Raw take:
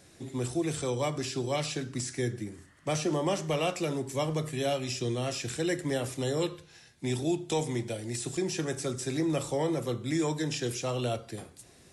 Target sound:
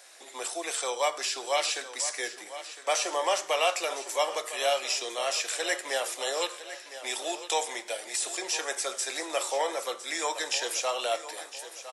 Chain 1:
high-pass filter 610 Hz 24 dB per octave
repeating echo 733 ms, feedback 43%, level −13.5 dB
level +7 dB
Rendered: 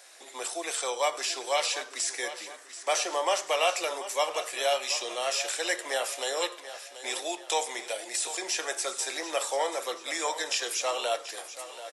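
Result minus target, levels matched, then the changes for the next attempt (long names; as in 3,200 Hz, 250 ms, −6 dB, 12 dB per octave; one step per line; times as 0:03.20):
echo 275 ms early
change: repeating echo 1,008 ms, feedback 43%, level −13.5 dB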